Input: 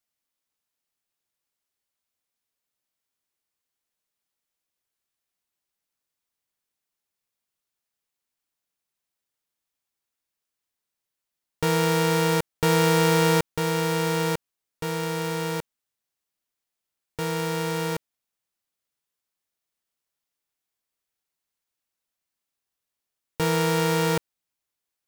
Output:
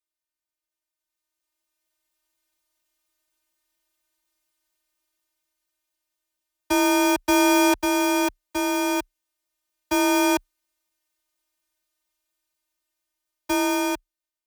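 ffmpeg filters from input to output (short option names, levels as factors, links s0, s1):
-filter_complex "[0:a]asplit=2[s0][s1];[s1]alimiter=limit=0.0708:level=0:latency=1,volume=0.794[s2];[s0][s2]amix=inputs=2:normalize=0,dynaudnorm=f=800:g=7:m=5.62,afftfilt=real='hypot(re,im)*cos(PI*b)':imag='0':win_size=1024:overlap=0.75,afreqshift=18,asetrate=76440,aresample=44100,volume=0.501"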